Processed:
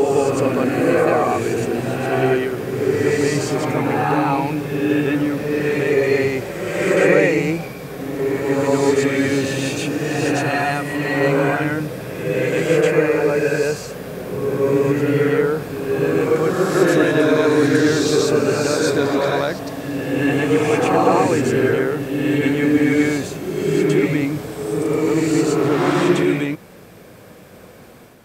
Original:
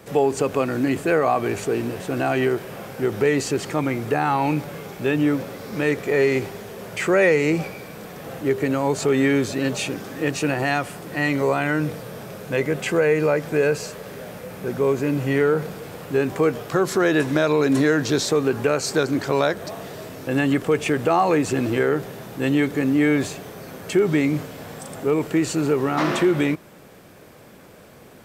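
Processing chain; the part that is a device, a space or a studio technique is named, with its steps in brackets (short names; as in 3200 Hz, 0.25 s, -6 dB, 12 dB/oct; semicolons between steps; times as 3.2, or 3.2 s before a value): reverse reverb (reverse; reverb RT60 1.6 s, pre-delay 92 ms, DRR -3.5 dB; reverse); gain -1.5 dB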